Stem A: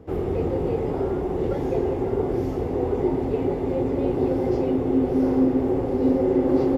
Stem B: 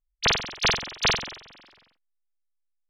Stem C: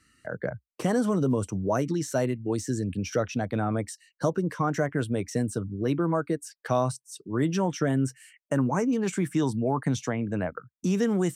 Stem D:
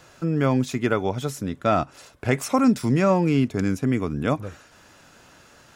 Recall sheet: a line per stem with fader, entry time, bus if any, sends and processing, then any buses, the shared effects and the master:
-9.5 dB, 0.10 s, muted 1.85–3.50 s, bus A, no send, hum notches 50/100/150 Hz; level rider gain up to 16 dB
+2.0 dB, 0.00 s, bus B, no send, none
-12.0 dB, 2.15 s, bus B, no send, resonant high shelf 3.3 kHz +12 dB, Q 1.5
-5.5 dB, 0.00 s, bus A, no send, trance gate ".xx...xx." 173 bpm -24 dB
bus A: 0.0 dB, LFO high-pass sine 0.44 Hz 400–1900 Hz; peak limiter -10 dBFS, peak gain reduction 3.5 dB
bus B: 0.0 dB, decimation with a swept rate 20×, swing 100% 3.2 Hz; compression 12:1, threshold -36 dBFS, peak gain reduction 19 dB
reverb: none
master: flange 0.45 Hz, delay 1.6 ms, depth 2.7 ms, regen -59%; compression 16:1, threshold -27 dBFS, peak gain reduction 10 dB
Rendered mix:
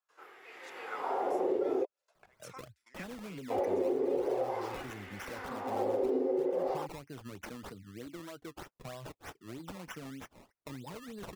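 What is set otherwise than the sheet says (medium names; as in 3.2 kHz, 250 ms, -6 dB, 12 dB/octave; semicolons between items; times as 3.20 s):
stem B: muted; stem D -5.5 dB -> -17.0 dB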